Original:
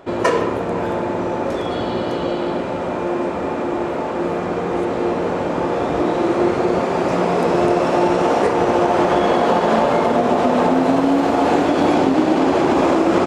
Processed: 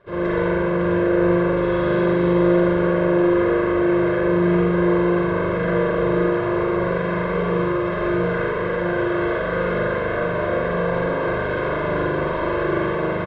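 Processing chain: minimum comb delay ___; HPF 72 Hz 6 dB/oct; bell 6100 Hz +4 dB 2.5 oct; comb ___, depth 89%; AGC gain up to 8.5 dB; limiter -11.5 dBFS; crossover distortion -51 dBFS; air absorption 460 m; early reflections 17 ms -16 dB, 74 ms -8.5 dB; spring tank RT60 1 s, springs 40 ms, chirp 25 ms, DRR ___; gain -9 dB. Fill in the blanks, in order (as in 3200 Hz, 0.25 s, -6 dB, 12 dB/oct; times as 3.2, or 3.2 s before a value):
0.55 ms, 1.9 ms, -7 dB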